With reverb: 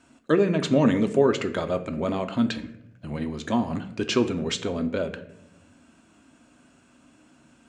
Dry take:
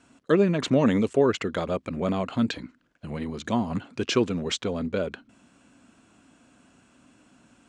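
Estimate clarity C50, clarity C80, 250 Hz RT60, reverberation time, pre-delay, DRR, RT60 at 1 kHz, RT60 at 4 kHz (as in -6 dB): 13.5 dB, 16.0 dB, 1.2 s, 0.80 s, 3 ms, 7.5 dB, 0.65 s, 0.50 s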